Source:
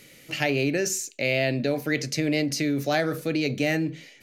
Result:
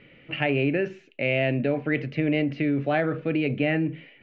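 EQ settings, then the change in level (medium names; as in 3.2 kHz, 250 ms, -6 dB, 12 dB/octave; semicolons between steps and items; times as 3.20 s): Chebyshev low-pass 2.9 kHz, order 4; bass shelf 320 Hz +3.5 dB; 0.0 dB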